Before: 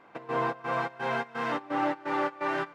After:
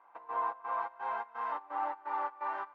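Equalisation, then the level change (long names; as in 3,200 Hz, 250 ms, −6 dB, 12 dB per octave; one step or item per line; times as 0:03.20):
resonant band-pass 950 Hz, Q 3.5
spectral tilt +1.5 dB per octave
0.0 dB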